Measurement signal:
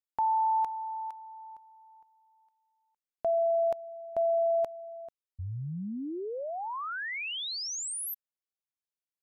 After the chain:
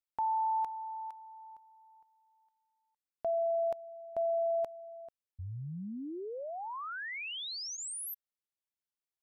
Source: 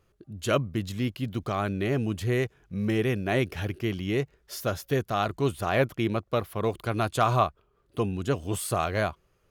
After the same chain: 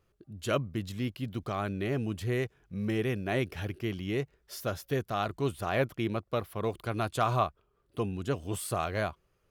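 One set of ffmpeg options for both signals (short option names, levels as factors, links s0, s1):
-af "bandreject=f=6600:w=27,volume=0.596"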